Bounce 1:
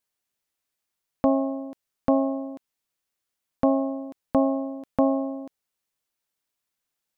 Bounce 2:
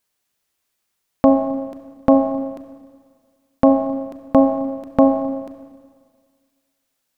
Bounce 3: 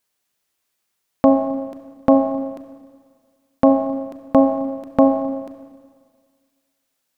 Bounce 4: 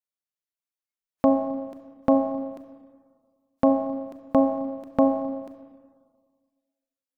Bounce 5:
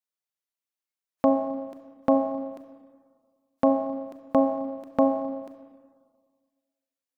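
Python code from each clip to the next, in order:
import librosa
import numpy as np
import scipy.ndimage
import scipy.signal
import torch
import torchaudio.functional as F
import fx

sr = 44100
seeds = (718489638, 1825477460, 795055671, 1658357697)

y1 = fx.rev_schroeder(x, sr, rt60_s=1.8, comb_ms=29, drr_db=7.5)
y1 = y1 * 10.0 ** (8.0 / 20.0)
y2 = fx.low_shelf(y1, sr, hz=100.0, db=-5.0)
y3 = fx.noise_reduce_blind(y2, sr, reduce_db=17)
y3 = y3 * 10.0 ** (-6.0 / 20.0)
y4 = fx.low_shelf(y3, sr, hz=170.0, db=-8.5)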